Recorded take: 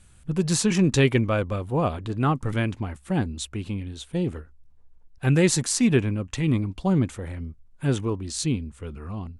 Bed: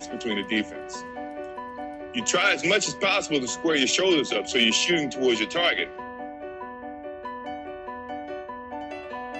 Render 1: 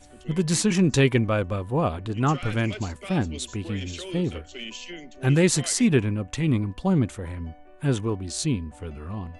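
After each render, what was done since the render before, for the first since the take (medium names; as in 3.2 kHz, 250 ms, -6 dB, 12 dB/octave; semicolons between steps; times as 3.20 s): add bed -16.5 dB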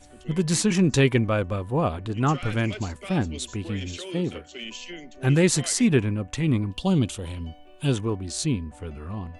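3.96–4.62 s: high-pass 190 Hz -> 89 Hz; 6.71–7.92 s: resonant high shelf 2.4 kHz +7 dB, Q 3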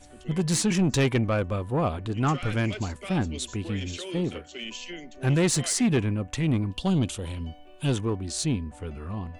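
saturation -16.5 dBFS, distortion -15 dB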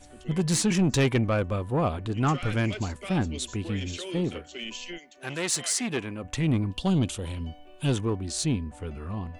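4.97–6.23 s: high-pass 1.5 kHz -> 420 Hz 6 dB/octave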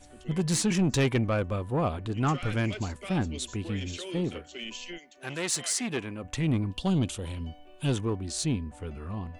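trim -2 dB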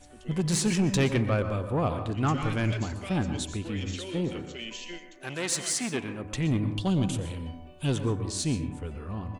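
delay 90 ms -22 dB; plate-style reverb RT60 0.62 s, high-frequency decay 0.35×, pre-delay 110 ms, DRR 8.5 dB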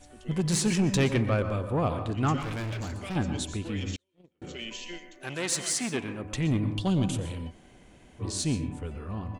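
2.40–3.16 s: overload inside the chain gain 31 dB; 3.96–4.42 s: gate -24 dBFS, range -43 dB; 7.50–8.21 s: room tone, crossfade 0.06 s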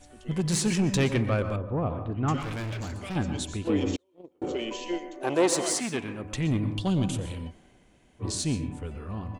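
1.56–2.28 s: tape spacing loss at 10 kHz 40 dB; 3.67–5.80 s: high-order bell 550 Hz +13 dB 2.4 oct; 7.26–8.35 s: three bands expanded up and down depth 40%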